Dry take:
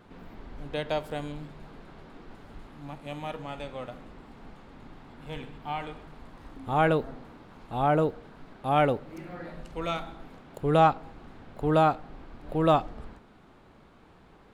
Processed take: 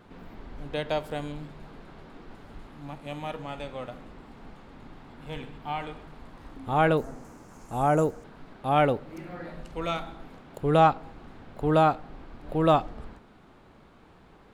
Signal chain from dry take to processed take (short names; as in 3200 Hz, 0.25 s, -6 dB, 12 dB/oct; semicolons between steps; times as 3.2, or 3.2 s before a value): 6.97–8.24 resonant high shelf 5000 Hz +10 dB, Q 3; gain +1 dB